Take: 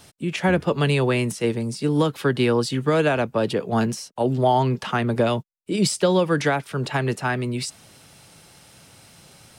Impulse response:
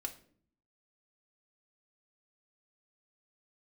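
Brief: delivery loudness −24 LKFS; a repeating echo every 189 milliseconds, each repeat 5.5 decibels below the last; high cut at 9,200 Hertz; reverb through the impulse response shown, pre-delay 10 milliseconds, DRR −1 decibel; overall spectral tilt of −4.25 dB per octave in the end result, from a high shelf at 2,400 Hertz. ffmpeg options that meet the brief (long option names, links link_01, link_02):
-filter_complex "[0:a]lowpass=9200,highshelf=frequency=2400:gain=8,aecho=1:1:189|378|567|756|945|1134|1323:0.531|0.281|0.149|0.079|0.0419|0.0222|0.0118,asplit=2[link_01][link_02];[1:a]atrim=start_sample=2205,adelay=10[link_03];[link_02][link_03]afir=irnorm=-1:irlink=0,volume=2dB[link_04];[link_01][link_04]amix=inputs=2:normalize=0,volume=-7dB"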